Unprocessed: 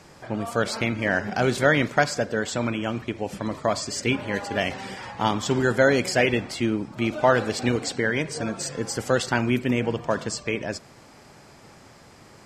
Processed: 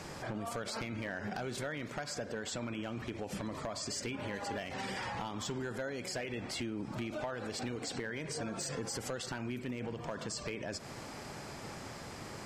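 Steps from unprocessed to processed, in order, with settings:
downward compressor 16 to 1, threshold −32 dBFS, peak gain reduction 20 dB
hard clipping −27.5 dBFS, distortion −17 dB
brickwall limiter −34.5 dBFS, peak gain reduction 7 dB
level +4 dB

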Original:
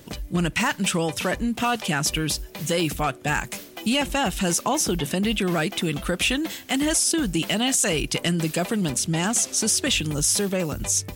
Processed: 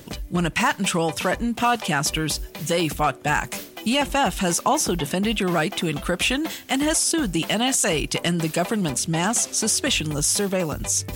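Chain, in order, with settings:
dynamic equaliser 910 Hz, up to +5 dB, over −37 dBFS, Q 0.95
reversed playback
upward compression, threshold −26 dBFS
reversed playback

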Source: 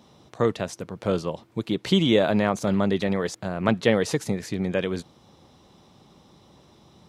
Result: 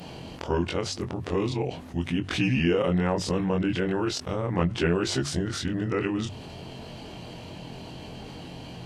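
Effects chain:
every overlapping window played backwards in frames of 37 ms
mains-hum notches 60/120/180 Hz
speed change −20%
envelope flattener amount 50%
level −3 dB

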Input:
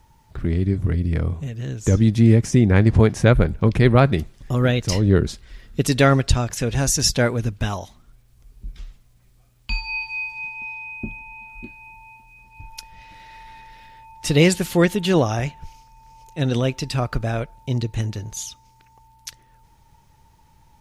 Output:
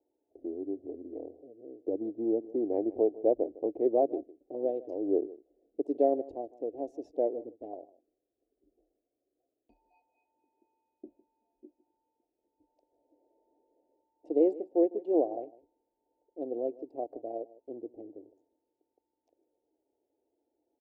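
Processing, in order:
adaptive Wiener filter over 41 samples
elliptic band-pass filter 300–730 Hz, stop band 40 dB
single-tap delay 155 ms −19.5 dB
level −5.5 dB

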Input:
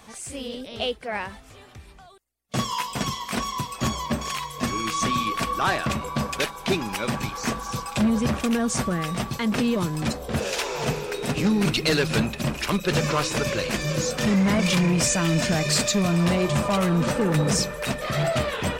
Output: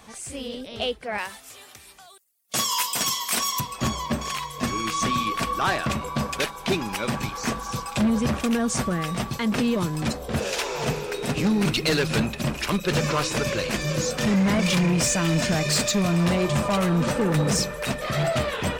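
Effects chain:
0:01.18–0:03.60: RIAA equalisation recording
hard clipping −17 dBFS, distortion −24 dB

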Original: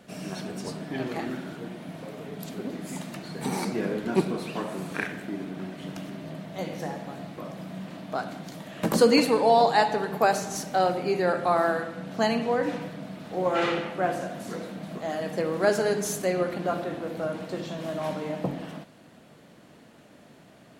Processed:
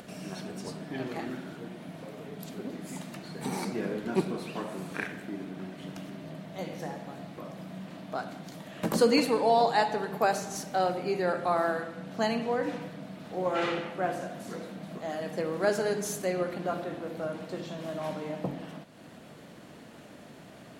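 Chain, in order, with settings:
upward compression, threshold −36 dBFS
level −4 dB

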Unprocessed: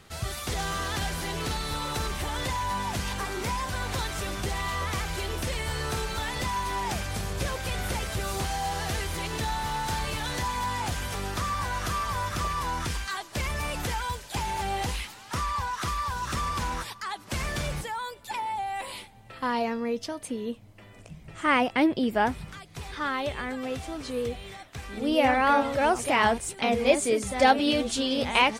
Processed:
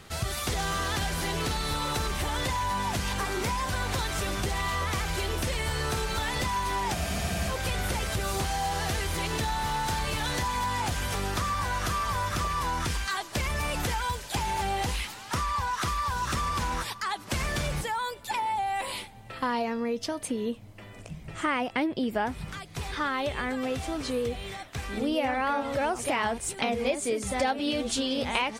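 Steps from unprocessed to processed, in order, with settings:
downward compressor 4 to 1, threshold −30 dBFS, peak gain reduction 13.5 dB
frozen spectrum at 0:06.97, 0.52 s
level +4 dB

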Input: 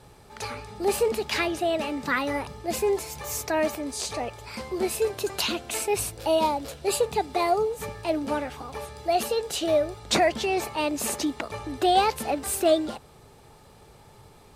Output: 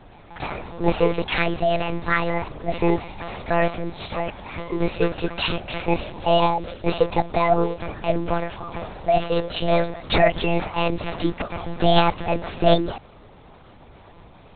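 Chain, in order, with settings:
echo ahead of the sound 277 ms −24 dB
one-pitch LPC vocoder at 8 kHz 170 Hz
level +5 dB

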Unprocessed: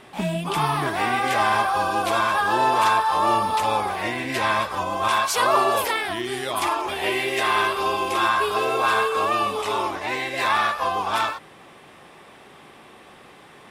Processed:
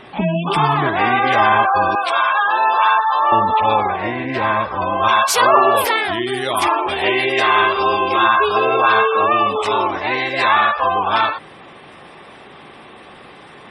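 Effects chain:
gate on every frequency bin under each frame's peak −25 dB strong
0:01.95–0:03.32: high-pass filter 840 Hz 12 dB per octave
0:03.96–0:04.82: head-to-tape spacing loss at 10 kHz 25 dB
level +7 dB

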